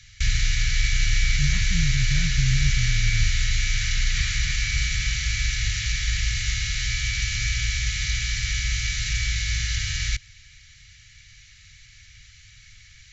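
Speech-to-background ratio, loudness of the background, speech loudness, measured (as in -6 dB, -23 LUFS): -4.0 dB, -24.5 LUFS, -28.5 LUFS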